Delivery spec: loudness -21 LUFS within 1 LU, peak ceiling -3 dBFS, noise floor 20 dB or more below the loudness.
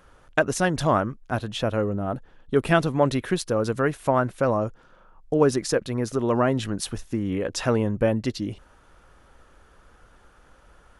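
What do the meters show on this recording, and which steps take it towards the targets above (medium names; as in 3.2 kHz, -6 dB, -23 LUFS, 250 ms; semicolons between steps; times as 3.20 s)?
loudness -24.5 LUFS; peak level -5.0 dBFS; loudness target -21.0 LUFS
-> trim +3.5 dB; peak limiter -3 dBFS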